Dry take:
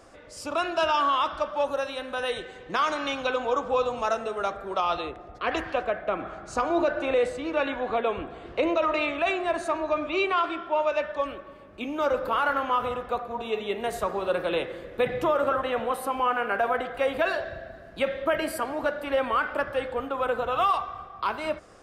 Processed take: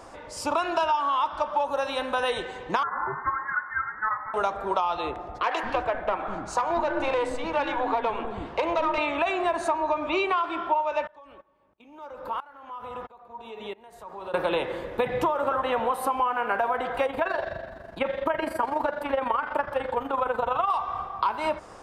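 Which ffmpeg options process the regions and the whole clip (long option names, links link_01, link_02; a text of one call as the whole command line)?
ffmpeg -i in.wav -filter_complex "[0:a]asettb=1/sr,asplit=3[link_01][link_02][link_03];[link_01]atrim=end=2.834[link_04];[link_02]atrim=start=2.83:end=4.34,asetpts=PTS-STARTPTS,afade=type=in:duration=0.004:curve=qsin,afade=type=out:start_time=1.506:duration=0.004:curve=qsin,highpass=frequency=1100:width=0.5412,highpass=frequency=1100:width=1.3066,lowpass=frequency=2200:width_type=q:width=0.5098,lowpass=frequency=2200:width_type=q:width=0.6013,lowpass=frequency=2200:width_type=q:width=0.9,lowpass=frequency=2200:width_type=q:width=2.563,afreqshift=-2600[link_05];[link_03]atrim=start=4.336[link_06];[link_04][link_05]acrossfade=duration=0.004:curve1=hsin:curve2=qsin[link_07];[link_07][link_06]acrossfade=duration=0.004:curve1=qsin:curve2=hsin,asettb=1/sr,asplit=3[link_08][link_09][link_10];[link_08]atrim=end=5.434[link_11];[link_09]atrim=start=5.43:end=8.98,asetpts=PTS-STARTPTS,afade=type=in:duration=0.004:curve=qsin,afade=type=out:start_time=3.546:duration=0.004:curve=qsin,aeval=exprs='(tanh(8.91*val(0)+0.4)-tanh(0.4))/8.91':channel_layout=same,acrossover=split=340[link_12][link_13];[link_12]adelay=200[link_14];[link_14][link_13]amix=inputs=2:normalize=0,atrim=end_sample=156555[link_15];[link_10]atrim=start=8.976[link_16];[link_11][link_15]acrossfade=duration=0.004:curve1=hsin:curve2=qsin[link_17];[link_17][link_16]acrossfade=duration=0.004:curve1=qsin:curve2=hsin,asettb=1/sr,asplit=3[link_18][link_19][link_20];[link_18]atrim=end=11.074[link_21];[link_19]atrim=start=11.07:end=14.34,asetpts=PTS-STARTPTS,afade=type=in:duration=0.004:curve=qsin,afade=type=out:start_time=3.266:duration=0.004:curve=qsin,agate=range=-20dB:threshold=-40dB:ratio=16:release=100:detection=peak,acompressor=threshold=-37dB:ratio=4:attack=3.2:release=140:knee=1:detection=peak,aeval=exprs='val(0)*pow(10,-22*if(lt(mod(-1.5*n/s,1),2*abs(-1.5)/1000),1-mod(-1.5*n/s,1)/(2*abs(-1.5)/1000),(mod(-1.5*n/s,1)-2*abs(-1.5)/1000)/(1-2*abs(-1.5)/1000))/20)':channel_layout=same[link_22];[link_20]atrim=start=14.336[link_23];[link_21][link_22]acrossfade=duration=0.004:curve1=hsin:curve2=qsin[link_24];[link_24][link_23]acrossfade=duration=0.004:curve1=qsin:curve2=hsin,asettb=1/sr,asplit=3[link_25][link_26][link_27];[link_25]atrim=end=17.064[link_28];[link_26]atrim=start=17.06:end=20.7,asetpts=PTS-STARTPTS,afade=type=in:duration=0.004:curve=qsin,afade=type=out:start_time=3.636:duration=0.004:curve=qsin,acrossover=split=2800[link_29][link_30];[link_30]acompressor=threshold=-48dB:ratio=4:attack=1:release=60[link_31];[link_29][link_31]amix=inputs=2:normalize=0,tremolo=f=24:d=0.667[link_32];[link_27]atrim=start=20.696[link_33];[link_28][link_32]acrossfade=duration=0.004:curve1=hsin:curve2=qsin[link_34];[link_34][link_33]acrossfade=duration=0.004:curve1=qsin:curve2=hsin,equalizer=frequency=920:width_type=o:width=0.37:gain=12,acompressor=threshold=-26dB:ratio=10,volume=4.5dB" out.wav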